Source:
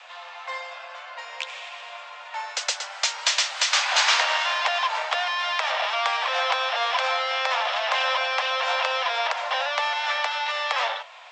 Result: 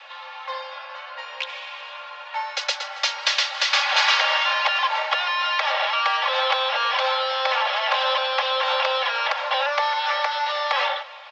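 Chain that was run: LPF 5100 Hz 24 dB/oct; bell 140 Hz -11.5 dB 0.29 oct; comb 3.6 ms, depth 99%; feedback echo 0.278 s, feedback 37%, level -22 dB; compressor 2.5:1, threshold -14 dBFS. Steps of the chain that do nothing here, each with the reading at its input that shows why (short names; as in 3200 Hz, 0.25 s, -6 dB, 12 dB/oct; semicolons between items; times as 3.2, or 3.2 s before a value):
bell 140 Hz: input band starts at 450 Hz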